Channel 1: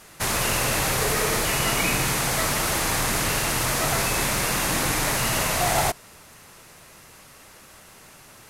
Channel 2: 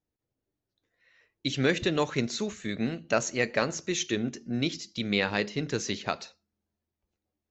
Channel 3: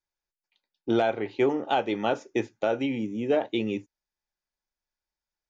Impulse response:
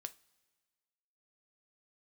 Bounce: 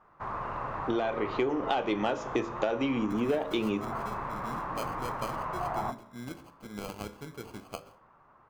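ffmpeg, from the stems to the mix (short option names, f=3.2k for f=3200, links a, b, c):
-filter_complex "[0:a]lowpass=f=1.1k:t=q:w=3.6,volume=-9dB[a];[1:a]highshelf=f=5.8k:g=-6,acrusher=samples=24:mix=1:aa=0.000001,adelay=1650,volume=-7dB[b];[2:a]dynaudnorm=f=510:g=5:m=16dB,aeval=exprs='0.841*(cos(1*acos(clip(val(0)/0.841,-1,1)))-cos(1*PI/2))+0.0422*(cos(5*acos(clip(val(0)/0.841,-1,1)))-cos(5*PI/2))':c=same,volume=-1.5dB[c];[a][b][c]amix=inputs=3:normalize=0,bandreject=f=56.33:t=h:w=4,bandreject=f=112.66:t=h:w=4,bandreject=f=168.99:t=h:w=4,bandreject=f=225.32:t=h:w=4,bandreject=f=281.65:t=h:w=4,bandreject=f=337.98:t=h:w=4,bandreject=f=394.31:t=h:w=4,bandreject=f=450.64:t=h:w=4,bandreject=f=506.97:t=h:w=4,bandreject=f=563.3:t=h:w=4,bandreject=f=619.63:t=h:w=4,flanger=delay=8.2:depth=7.7:regen=89:speed=0.24:shape=triangular,acompressor=threshold=-26dB:ratio=6"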